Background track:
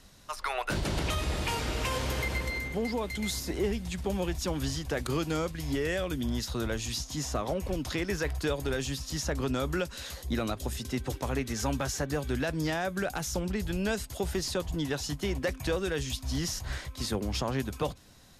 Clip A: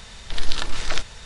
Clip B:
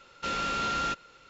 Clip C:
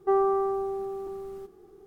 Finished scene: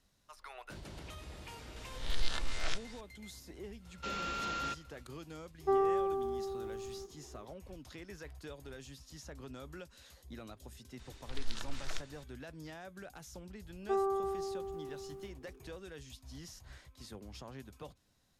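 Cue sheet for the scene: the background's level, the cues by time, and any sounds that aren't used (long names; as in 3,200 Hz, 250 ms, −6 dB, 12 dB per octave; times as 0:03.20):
background track −17.5 dB
0:01.76: mix in A −13.5 dB + peak hold with a rise ahead of every peak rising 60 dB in 0.52 s
0:03.80: mix in B −8 dB, fades 0.10 s
0:05.60: mix in C −6 dB
0:10.99: mix in A −16.5 dB + downsampling to 22,050 Hz
0:13.82: mix in C −9 dB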